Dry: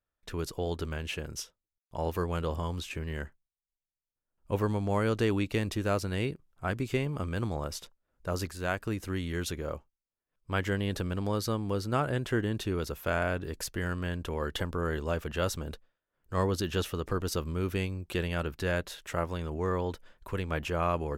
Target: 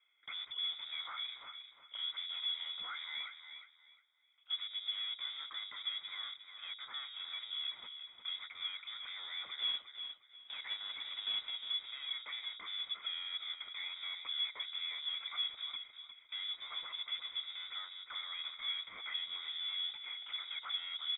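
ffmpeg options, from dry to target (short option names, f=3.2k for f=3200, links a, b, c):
-filter_complex "[0:a]acrossover=split=150[a][b];[b]acompressor=threshold=-42dB:ratio=5[c];[a][c]amix=inputs=2:normalize=0,asplit=2[d][e];[e]highpass=f=720:p=1,volume=36dB,asoftclip=type=tanh:threshold=-24.5dB[f];[d][f]amix=inputs=2:normalize=0,lowpass=f=2.4k:p=1,volume=-6dB,asplit=3[g][h][i];[g]bandpass=f=530:t=q:w=8,volume=0dB[j];[h]bandpass=f=1.84k:t=q:w=8,volume=-6dB[k];[i]bandpass=f=2.48k:t=q:w=8,volume=-9dB[l];[j][k][l]amix=inputs=3:normalize=0,asettb=1/sr,asplit=3[m][n][o];[m]atrim=end=9.594[p];[n]atrim=start=9.59:end=11.5,asetpts=PTS-STARTPTS,afade=t=in:d=0.004:c=qsin,afade=t=out:st=1.906:d=0.004:c=qsin,acrusher=bits=2:mode=log:mix=0:aa=0.000001[q];[o]atrim=start=11.496[r];[p][q]acrossfade=d=0.004:c1=hsin:c2=qsin[s];[s][r]acrossfade=d=0.004:c1=qsin:c2=hsin,aecho=1:1:357|714|1071:0.355|0.0852|0.0204,lowpass=f=3.3k:t=q:w=0.5098,lowpass=f=3.3k:t=q:w=0.6013,lowpass=f=3.3k:t=q:w=0.9,lowpass=f=3.3k:t=q:w=2.563,afreqshift=-3900,volume=1dB"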